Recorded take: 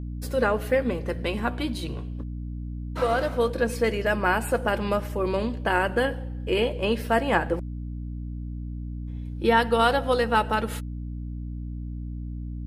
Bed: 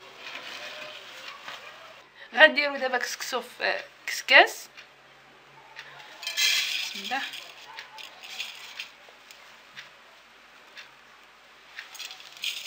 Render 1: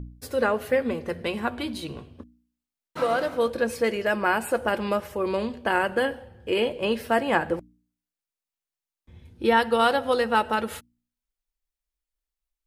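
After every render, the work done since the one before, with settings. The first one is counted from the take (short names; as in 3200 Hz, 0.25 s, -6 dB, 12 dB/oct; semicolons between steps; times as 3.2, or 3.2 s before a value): de-hum 60 Hz, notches 5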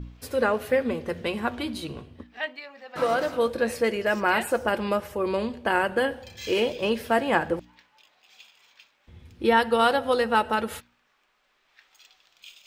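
add bed -16 dB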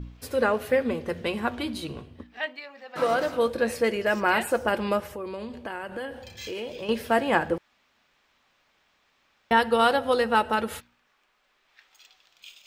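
2.46–3.07 HPF 120 Hz; 5.05–6.89 compressor 3:1, threshold -34 dBFS; 7.58–9.51 room tone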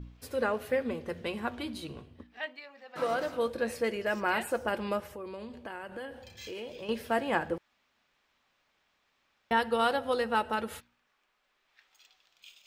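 gain -6.5 dB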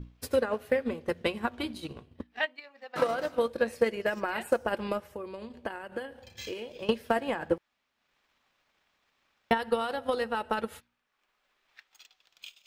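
limiter -23 dBFS, peak gain reduction 9.5 dB; transient shaper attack +10 dB, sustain -6 dB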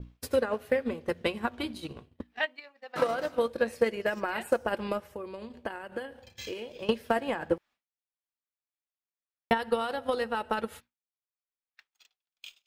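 expander -48 dBFS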